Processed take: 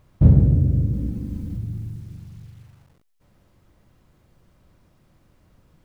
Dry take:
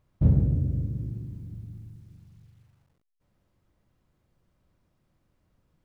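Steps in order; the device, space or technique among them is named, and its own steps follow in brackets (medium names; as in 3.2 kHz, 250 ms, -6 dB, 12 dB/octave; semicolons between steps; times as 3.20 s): parallel compression (in parallel at 0 dB: compression, threshold -37 dBFS, peak gain reduction 20.5 dB); 0.93–1.57 s: on the sum: comb 3.9 ms, depth 82%; trim +6.5 dB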